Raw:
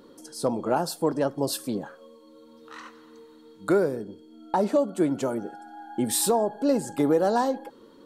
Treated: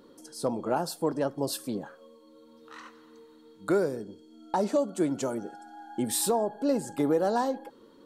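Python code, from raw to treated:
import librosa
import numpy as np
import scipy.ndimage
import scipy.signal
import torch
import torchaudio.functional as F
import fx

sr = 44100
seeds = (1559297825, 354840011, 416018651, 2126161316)

y = fx.peak_eq(x, sr, hz=6400.0, db=7.0, octaves=1.2, at=(3.73, 6.03))
y = y * librosa.db_to_amplitude(-3.5)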